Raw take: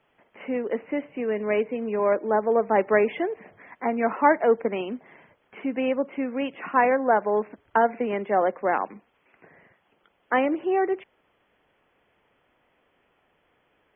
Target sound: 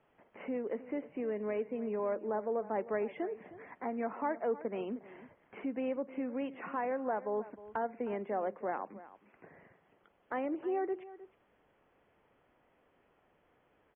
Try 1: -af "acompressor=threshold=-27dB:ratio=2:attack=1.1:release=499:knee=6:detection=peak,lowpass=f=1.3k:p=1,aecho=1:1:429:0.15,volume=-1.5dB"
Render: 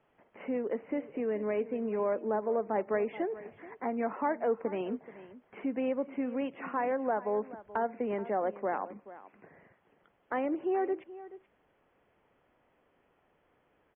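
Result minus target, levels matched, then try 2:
echo 0.118 s late; compressor: peak gain reduction -4 dB
-af "acompressor=threshold=-34.5dB:ratio=2:attack=1.1:release=499:knee=6:detection=peak,lowpass=f=1.3k:p=1,aecho=1:1:311:0.15,volume=-1.5dB"

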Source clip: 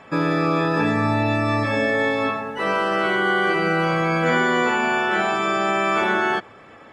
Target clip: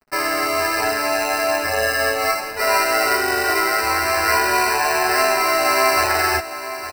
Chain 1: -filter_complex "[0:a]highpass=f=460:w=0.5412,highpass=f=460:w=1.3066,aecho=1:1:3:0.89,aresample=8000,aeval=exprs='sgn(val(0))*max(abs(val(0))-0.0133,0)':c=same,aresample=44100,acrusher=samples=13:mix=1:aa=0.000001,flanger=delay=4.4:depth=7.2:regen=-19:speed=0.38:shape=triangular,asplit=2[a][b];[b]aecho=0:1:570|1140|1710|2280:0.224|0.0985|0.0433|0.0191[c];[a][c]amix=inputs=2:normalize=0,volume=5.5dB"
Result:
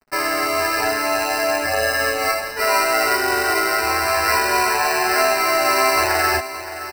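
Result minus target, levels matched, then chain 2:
echo 0.291 s early
-filter_complex "[0:a]highpass=f=460:w=0.5412,highpass=f=460:w=1.3066,aecho=1:1:3:0.89,aresample=8000,aeval=exprs='sgn(val(0))*max(abs(val(0))-0.0133,0)':c=same,aresample=44100,acrusher=samples=13:mix=1:aa=0.000001,flanger=delay=4.4:depth=7.2:regen=-19:speed=0.38:shape=triangular,asplit=2[a][b];[b]aecho=0:1:861|1722|2583|3444:0.224|0.0985|0.0433|0.0191[c];[a][c]amix=inputs=2:normalize=0,volume=5.5dB"

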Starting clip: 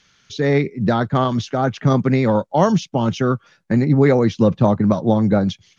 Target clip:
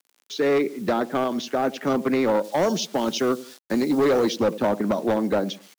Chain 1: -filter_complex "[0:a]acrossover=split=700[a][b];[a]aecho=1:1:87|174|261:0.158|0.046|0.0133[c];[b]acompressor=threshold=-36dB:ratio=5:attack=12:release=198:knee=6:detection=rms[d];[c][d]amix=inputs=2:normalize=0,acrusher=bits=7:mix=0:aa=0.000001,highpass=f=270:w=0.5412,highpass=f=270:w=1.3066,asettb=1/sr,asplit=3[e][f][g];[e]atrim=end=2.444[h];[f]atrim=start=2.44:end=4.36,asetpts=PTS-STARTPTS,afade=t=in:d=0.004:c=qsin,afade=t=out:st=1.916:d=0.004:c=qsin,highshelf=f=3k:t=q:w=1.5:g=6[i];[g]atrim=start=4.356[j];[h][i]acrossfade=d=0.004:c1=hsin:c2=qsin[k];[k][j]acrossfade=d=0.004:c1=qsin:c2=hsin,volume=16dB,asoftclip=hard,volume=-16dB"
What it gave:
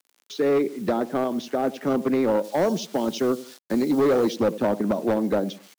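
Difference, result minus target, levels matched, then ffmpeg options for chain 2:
compressor: peak gain reduction +7.5 dB
-filter_complex "[0:a]acrossover=split=700[a][b];[a]aecho=1:1:87|174|261:0.158|0.046|0.0133[c];[b]acompressor=threshold=-26.5dB:ratio=5:attack=12:release=198:knee=6:detection=rms[d];[c][d]amix=inputs=2:normalize=0,acrusher=bits=7:mix=0:aa=0.000001,highpass=f=270:w=0.5412,highpass=f=270:w=1.3066,asettb=1/sr,asplit=3[e][f][g];[e]atrim=end=2.444[h];[f]atrim=start=2.44:end=4.36,asetpts=PTS-STARTPTS,afade=t=in:d=0.004:c=qsin,afade=t=out:st=1.916:d=0.004:c=qsin,highshelf=f=3k:t=q:w=1.5:g=6[i];[g]atrim=start=4.356[j];[h][i]acrossfade=d=0.004:c1=hsin:c2=qsin[k];[k][j]acrossfade=d=0.004:c1=qsin:c2=hsin,volume=16dB,asoftclip=hard,volume=-16dB"

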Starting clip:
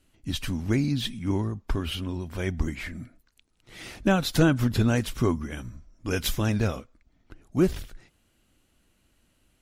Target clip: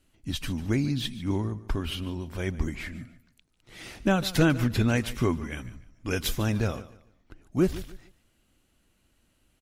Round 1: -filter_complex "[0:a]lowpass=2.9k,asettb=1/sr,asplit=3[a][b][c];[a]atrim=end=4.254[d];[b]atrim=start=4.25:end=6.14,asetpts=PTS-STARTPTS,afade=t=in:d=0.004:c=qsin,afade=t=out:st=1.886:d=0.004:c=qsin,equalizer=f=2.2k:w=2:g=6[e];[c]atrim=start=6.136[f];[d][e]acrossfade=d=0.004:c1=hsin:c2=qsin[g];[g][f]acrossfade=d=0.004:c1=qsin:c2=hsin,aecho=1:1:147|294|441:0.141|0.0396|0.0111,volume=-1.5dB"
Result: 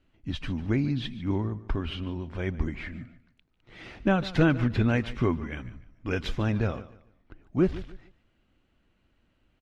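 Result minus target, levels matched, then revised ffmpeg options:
4000 Hz band -5.0 dB
-filter_complex "[0:a]asettb=1/sr,asplit=3[a][b][c];[a]atrim=end=4.254[d];[b]atrim=start=4.25:end=6.14,asetpts=PTS-STARTPTS,afade=t=in:d=0.004:c=qsin,afade=t=out:st=1.886:d=0.004:c=qsin,equalizer=f=2.2k:w=2:g=6[e];[c]atrim=start=6.136[f];[d][e]acrossfade=d=0.004:c1=hsin:c2=qsin[g];[g][f]acrossfade=d=0.004:c1=qsin:c2=hsin,aecho=1:1:147|294|441:0.141|0.0396|0.0111,volume=-1.5dB"

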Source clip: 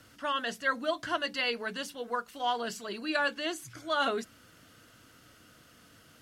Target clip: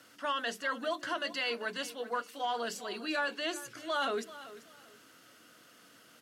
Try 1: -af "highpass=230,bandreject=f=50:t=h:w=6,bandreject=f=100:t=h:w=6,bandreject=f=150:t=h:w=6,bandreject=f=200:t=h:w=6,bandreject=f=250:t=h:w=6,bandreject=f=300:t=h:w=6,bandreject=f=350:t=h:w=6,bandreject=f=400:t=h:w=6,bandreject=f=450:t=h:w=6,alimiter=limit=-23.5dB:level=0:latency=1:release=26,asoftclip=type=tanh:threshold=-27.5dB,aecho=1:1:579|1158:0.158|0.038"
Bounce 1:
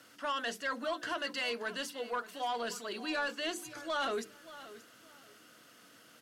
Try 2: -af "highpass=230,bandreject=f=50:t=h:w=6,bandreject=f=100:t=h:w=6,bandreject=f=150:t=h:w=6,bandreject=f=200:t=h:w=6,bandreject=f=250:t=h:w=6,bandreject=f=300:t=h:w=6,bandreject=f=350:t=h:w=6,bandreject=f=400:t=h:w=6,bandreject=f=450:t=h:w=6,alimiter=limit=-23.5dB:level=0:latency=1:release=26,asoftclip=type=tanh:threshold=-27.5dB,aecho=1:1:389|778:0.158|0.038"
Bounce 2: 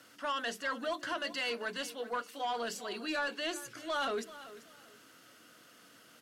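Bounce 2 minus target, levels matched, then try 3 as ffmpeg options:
soft clip: distortion +12 dB
-af "highpass=230,bandreject=f=50:t=h:w=6,bandreject=f=100:t=h:w=6,bandreject=f=150:t=h:w=6,bandreject=f=200:t=h:w=6,bandreject=f=250:t=h:w=6,bandreject=f=300:t=h:w=6,bandreject=f=350:t=h:w=6,bandreject=f=400:t=h:w=6,bandreject=f=450:t=h:w=6,alimiter=limit=-23.5dB:level=0:latency=1:release=26,asoftclip=type=tanh:threshold=-20dB,aecho=1:1:389|778:0.158|0.038"

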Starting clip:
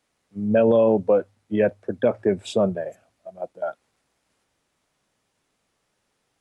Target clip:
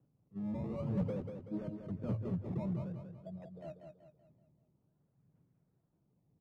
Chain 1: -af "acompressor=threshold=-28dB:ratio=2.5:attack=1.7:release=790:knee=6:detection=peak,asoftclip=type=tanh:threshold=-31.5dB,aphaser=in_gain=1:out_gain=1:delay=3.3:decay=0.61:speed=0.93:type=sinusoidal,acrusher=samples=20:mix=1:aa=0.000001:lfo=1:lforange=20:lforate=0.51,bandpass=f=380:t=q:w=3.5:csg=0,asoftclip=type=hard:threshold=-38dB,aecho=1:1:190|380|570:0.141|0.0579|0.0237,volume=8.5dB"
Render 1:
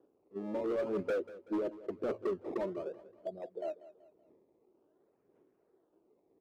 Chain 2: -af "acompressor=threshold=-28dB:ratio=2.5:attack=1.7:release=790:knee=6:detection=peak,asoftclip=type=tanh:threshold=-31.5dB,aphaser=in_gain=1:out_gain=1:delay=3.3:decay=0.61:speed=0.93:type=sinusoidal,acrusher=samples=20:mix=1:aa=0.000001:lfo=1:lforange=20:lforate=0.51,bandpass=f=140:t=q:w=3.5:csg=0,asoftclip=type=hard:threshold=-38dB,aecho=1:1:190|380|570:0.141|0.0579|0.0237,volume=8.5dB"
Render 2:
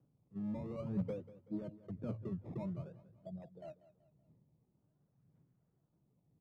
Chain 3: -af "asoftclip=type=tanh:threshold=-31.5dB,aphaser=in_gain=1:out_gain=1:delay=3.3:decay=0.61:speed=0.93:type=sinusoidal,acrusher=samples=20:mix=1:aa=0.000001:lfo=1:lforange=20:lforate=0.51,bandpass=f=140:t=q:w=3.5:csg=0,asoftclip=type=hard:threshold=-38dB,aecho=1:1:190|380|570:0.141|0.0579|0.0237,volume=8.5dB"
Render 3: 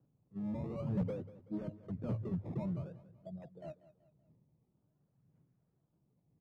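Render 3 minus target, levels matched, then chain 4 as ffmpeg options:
echo-to-direct -10.5 dB
-af "asoftclip=type=tanh:threshold=-31.5dB,aphaser=in_gain=1:out_gain=1:delay=3.3:decay=0.61:speed=0.93:type=sinusoidal,acrusher=samples=20:mix=1:aa=0.000001:lfo=1:lforange=20:lforate=0.51,bandpass=f=140:t=q:w=3.5:csg=0,asoftclip=type=hard:threshold=-38dB,aecho=1:1:190|380|570|760|950:0.473|0.194|0.0795|0.0326|0.0134,volume=8.5dB"

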